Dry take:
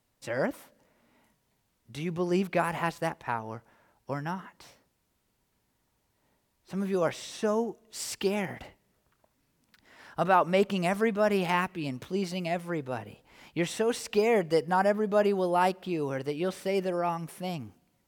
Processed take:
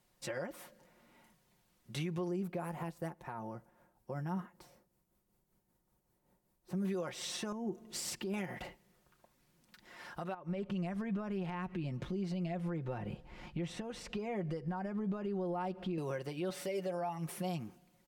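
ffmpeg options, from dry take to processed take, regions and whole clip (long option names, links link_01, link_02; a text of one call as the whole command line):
ffmpeg -i in.wav -filter_complex "[0:a]asettb=1/sr,asplit=3[link_01][link_02][link_03];[link_01]atrim=end=2.284[link_04];[link_02]atrim=start=2.28:end=6.85,asetpts=PTS-STARTPTS,afade=type=in:duration=0.004:curve=qsin,afade=type=out:start_time=4.566:duration=0.004:curve=qsin,equalizer=frequency=3100:width_type=o:width=2.9:gain=-11,tremolo=f=5.2:d=0.5[link_05];[link_03]atrim=start=6.846[link_06];[link_04][link_05]acrossfade=duration=0.004:curve1=hsin:curve2=qsin[link_07];[link_07][link_06]acrossfade=duration=0.004:curve1=qsin:curve2=hsin,asettb=1/sr,asplit=3[link_08][link_09][link_10];[link_08]atrim=end=7.524[link_11];[link_09]atrim=start=7.52:end=8.34,asetpts=PTS-STARTPTS,afade=type=in:duration=0.004:curve=qsin,afade=type=out:start_time=0.816:duration=0.004:curve=qsin,equalizer=frequency=180:width=0.39:gain=10.5,acompressor=threshold=-31dB:ratio=16:attack=3.2:release=140:knee=1:detection=peak[link_12];[link_10]atrim=start=8.336[link_13];[link_11][link_12]acrossfade=duration=0.004:curve1=hsin:curve2=qsin[link_14];[link_14][link_13]acrossfade=duration=0.004:curve1=qsin:curve2=hsin,asettb=1/sr,asplit=3[link_15][link_16][link_17];[link_15]atrim=end=10.344[link_18];[link_16]atrim=start=10.34:end=15.98,asetpts=PTS-STARTPTS,afade=type=in:duration=0.004:curve=qsin,afade=type=out:start_time=5.636:duration=0.004:curve=qsin,acompressor=threshold=-41dB:ratio=3:attack=3.2:release=140:knee=1:detection=peak,aemphasis=mode=reproduction:type=bsi[link_19];[link_17]atrim=start=15.976[link_20];[link_18][link_19]acrossfade=duration=0.004:curve1=hsin:curve2=qsin[link_21];[link_21][link_20]acrossfade=duration=0.004:curve1=qsin:curve2=hsin,asettb=1/sr,asplit=3[link_22][link_23][link_24];[link_22]atrim=end=16.504[link_25];[link_23]atrim=start=16.5:end=17.19,asetpts=PTS-STARTPTS,afade=type=in:duration=0.004:curve=qsin,afade=type=out:start_time=0.686:duration=0.004:curve=qsin,highpass=frequency=150:poles=1,aecho=1:1:7:0.64,atrim=end_sample=30429[link_26];[link_24]atrim=start=17.186[link_27];[link_25][link_26]acrossfade=duration=0.004:curve1=hsin:curve2=qsin[link_28];[link_28][link_27]acrossfade=duration=0.004:curve1=qsin:curve2=hsin,acompressor=threshold=-31dB:ratio=4,aecho=1:1:5.6:0.6,alimiter=level_in=5.5dB:limit=-24dB:level=0:latency=1:release=223,volume=-5.5dB" out.wav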